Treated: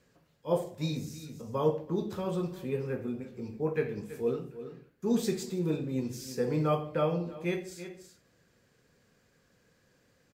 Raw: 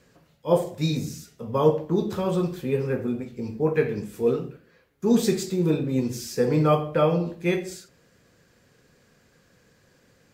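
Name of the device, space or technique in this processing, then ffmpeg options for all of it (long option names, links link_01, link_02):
ducked delay: -filter_complex "[0:a]asplit=3[link_01][link_02][link_03];[link_02]adelay=328,volume=-8dB[link_04];[link_03]apad=whole_len=470114[link_05];[link_04][link_05]sidechaincompress=threshold=-36dB:ratio=8:attack=9.6:release=298[link_06];[link_01][link_06]amix=inputs=2:normalize=0,volume=-8dB"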